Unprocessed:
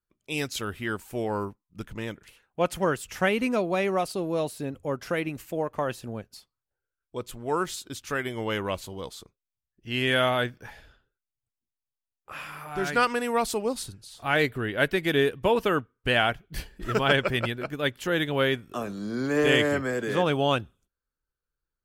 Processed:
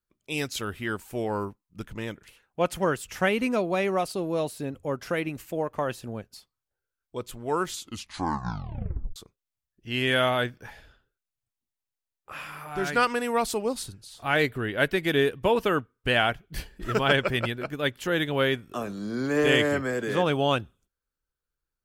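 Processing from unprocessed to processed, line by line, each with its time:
7.69 s: tape stop 1.47 s

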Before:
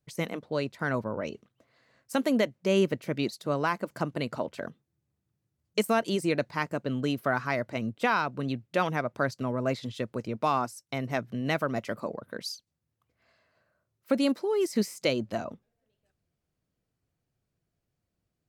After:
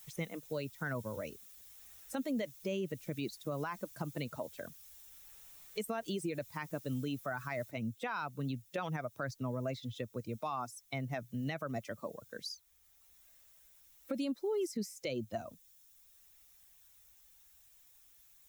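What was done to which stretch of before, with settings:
7.71 s: noise floor step -50 dB -57 dB
whole clip: expander on every frequency bin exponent 1.5; peak limiter -26.5 dBFS; three bands compressed up and down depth 40%; trim -1.5 dB

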